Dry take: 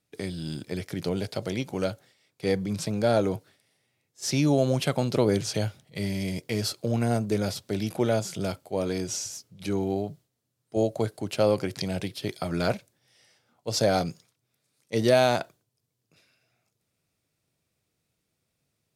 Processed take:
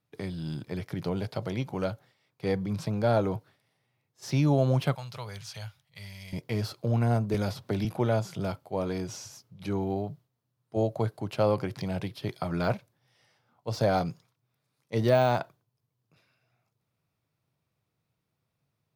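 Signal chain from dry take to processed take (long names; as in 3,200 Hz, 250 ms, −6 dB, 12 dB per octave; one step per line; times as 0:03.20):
octave-band graphic EQ 125/1,000/8,000 Hz +8/+8/−8 dB
de-essing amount 70%
0:04.95–0:06.33: guitar amp tone stack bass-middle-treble 10-0-10
0:07.34–0:07.85: multiband upward and downward compressor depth 100%
level −5 dB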